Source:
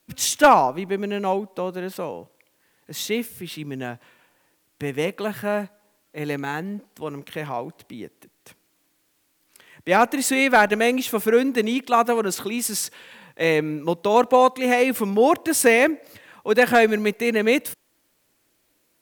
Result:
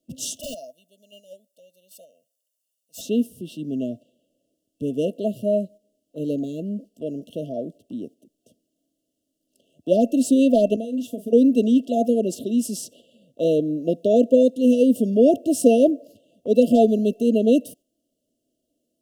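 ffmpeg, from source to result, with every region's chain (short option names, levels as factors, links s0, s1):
-filter_complex "[0:a]asettb=1/sr,asplit=3[s0][s1][s2];[s0]atrim=end=0.404[s3];[s1]atrim=start=0.4:end=3.01,asetpts=PTS-STARTPTS,afade=t=in:d=0.004:c=qsin,afade=t=out:st=2.606:d=0.004:c=qsin,aderivative,aeval=exprs='(mod(14.1*val(0)+1,2)-1)/14.1':c=same,aecho=1:1:1.4:0.76,atrim=end_sample=115101[s4];[s2]atrim=start=3.006[s5];[s3][s4]acrossfade=d=0.004:c1=hsin:c2=qsin[s6];[s6][s5]acrossfade=d=0.004:c1=qsin:c2=hsin,asettb=1/sr,asplit=3[s7][s8][s9];[s7]atrim=end=10.764[s10];[s8]atrim=start=10.76:end=11.33,asetpts=PTS-STARTPTS,afade=t=in:d=0.004:c=qsin,afade=t=out:st=0.566:d=0.004:c=qsin,agate=range=0.0224:threshold=0.0562:ratio=3:release=100:detection=peak,acompressor=threshold=0.0398:ratio=10:attack=3.2:release=140:knee=1:detection=peak,asplit=2[s11][s12];[s12]adelay=40,volume=0.282[s13];[s11][s13]amix=inputs=2:normalize=0,atrim=end_sample=25137[s14];[s9]atrim=start=11.326[s15];[s10][s14]acrossfade=d=0.004:c1=hsin:c2=qsin[s16];[s16][s15]acrossfade=d=0.004:c1=qsin:c2=hsin,afftfilt=real='re*(1-between(b*sr/4096,690,2700))':imag='im*(1-between(b*sr/4096,690,2700))':win_size=4096:overlap=0.75,agate=range=0.501:threshold=0.00631:ratio=16:detection=peak,equalizer=f=250:t=o:w=0.67:g=12,equalizer=f=630:t=o:w=0.67:g=8,equalizer=f=4000:t=o:w=0.67:g=-6,equalizer=f=16000:t=o:w=0.67:g=-11,volume=0.631"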